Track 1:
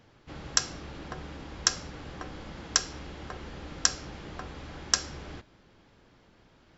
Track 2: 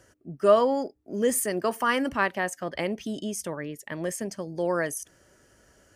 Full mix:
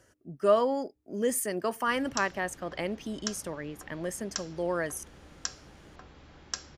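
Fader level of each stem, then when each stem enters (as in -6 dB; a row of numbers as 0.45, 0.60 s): -10.5, -4.0 dB; 1.60, 0.00 s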